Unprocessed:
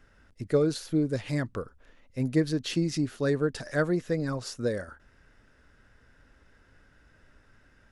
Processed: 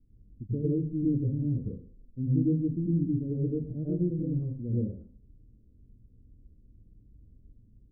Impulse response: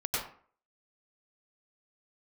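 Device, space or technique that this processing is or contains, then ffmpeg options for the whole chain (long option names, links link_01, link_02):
next room: -filter_complex "[0:a]lowpass=frequency=290:width=0.5412,lowpass=frequency=290:width=1.3066[link_01];[1:a]atrim=start_sample=2205[link_02];[link_01][link_02]afir=irnorm=-1:irlink=0,volume=-2dB"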